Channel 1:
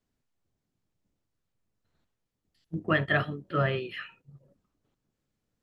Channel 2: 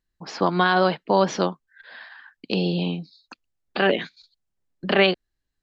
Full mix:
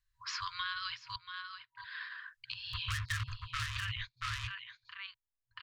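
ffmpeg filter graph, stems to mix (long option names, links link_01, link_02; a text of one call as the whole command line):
ffmpeg -i stem1.wav -i stem2.wav -filter_complex "[0:a]asubboost=boost=8:cutoff=170,acrusher=bits=3:mix=0:aa=0.5,volume=2.5dB,asplit=3[link_01][link_02][link_03];[link_02]volume=-6.5dB[link_04];[1:a]volume=-1dB,asplit=3[link_05][link_06][link_07];[link_05]atrim=end=1.16,asetpts=PTS-STARTPTS,afade=type=out:start_time=1.156:duration=0.004:curve=hsin[link_08];[link_06]atrim=start=1.16:end=1.77,asetpts=PTS-STARTPTS,volume=0[link_09];[link_07]atrim=start=1.77,asetpts=PTS-STARTPTS,afade=type=in:duration=0.004:curve=hsin[link_10];[link_08][link_09][link_10]concat=n=3:v=0:a=1,asplit=2[link_11][link_12];[link_12]volume=-16.5dB[link_13];[link_03]apad=whole_len=247886[link_14];[link_11][link_14]sidechaingate=range=-23dB:threshold=-56dB:ratio=16:detection=peak[link_15];[link_04][link_13]amix=inputs=2:normalize=0,aecho=0:1:681:1[link_16];[link_01][link_15][link_16]amix=inputs=3:normalize=0,acrossover=split=220|2000[link_17][link_18][link_19];[link_17]acompressor=threshold=-26dB:ratio=4[link_20];[link_18]acompressor=threshold=-38dB:ratio=4[link_21];[link_19]acompressor=threshold=-37dB:ratio=4[link_22];[link_20][link_21][link_22]amix=inputs=3:normalize=0,afftfilt=real='re*(1-between(b*sr/4096,120,960))':imag='im*(1-between(b*sr/4096,120,960))':win_size=4096:overlap=0.75,alimiter=level_in=1dB:limit=-24dB:level=0:latency=1:release=233,volume=-1dB" out.wav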